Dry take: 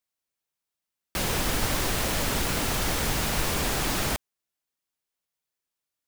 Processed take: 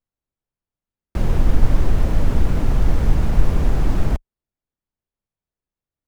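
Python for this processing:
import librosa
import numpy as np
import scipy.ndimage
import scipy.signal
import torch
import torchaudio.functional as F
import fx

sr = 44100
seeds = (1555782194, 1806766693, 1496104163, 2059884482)

p1 = fx.tilt_eq(x, sr, slope=-4.0)
p2 = fx.sample_hold(p1, sr, seeds[0], rate_hz=6100.0, jitter_pct=0)
p3 = p1 + F.gain(torch.from_numpy(p2), -10.0).numpy()
y = F.gain(torch.from_numpy(p3), -4.5).numpy()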